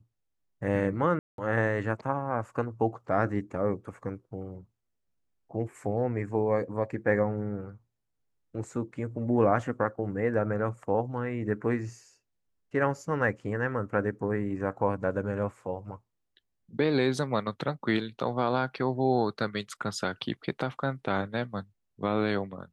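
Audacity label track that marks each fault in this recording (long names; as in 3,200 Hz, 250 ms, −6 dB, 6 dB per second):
1.190000	1.380000	drop-out 192 ms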